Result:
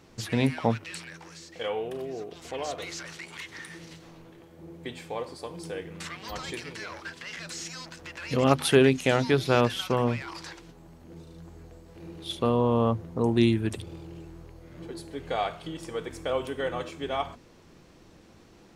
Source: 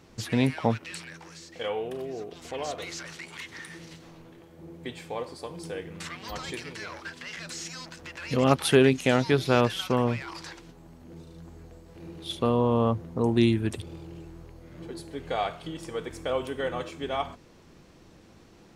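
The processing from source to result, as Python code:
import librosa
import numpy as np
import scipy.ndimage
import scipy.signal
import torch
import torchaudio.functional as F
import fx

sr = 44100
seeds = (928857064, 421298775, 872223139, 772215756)

y = fx.hum_notches(x, sr, base_hz=50, count=5)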